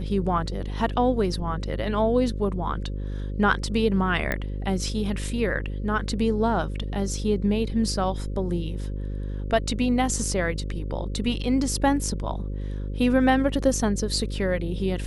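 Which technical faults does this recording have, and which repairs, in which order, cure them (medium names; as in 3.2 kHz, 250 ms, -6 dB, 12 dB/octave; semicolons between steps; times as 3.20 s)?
buzz 50 Hz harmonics 11 -30 dBFS
4.32 s: pop -12 dBFS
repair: de-click; de-hum 50 Hz, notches 11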